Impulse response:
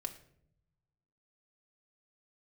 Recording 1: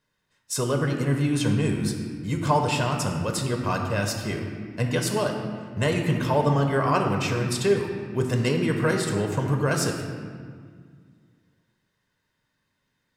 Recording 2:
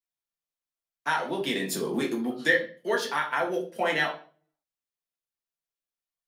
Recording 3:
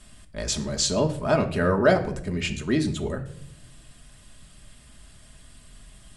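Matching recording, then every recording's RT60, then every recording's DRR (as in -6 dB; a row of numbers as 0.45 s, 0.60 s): 3; 1.9 s, 0.40 s, 0.70 s; 3.0 dB, -1.5 dB, 3.0 dB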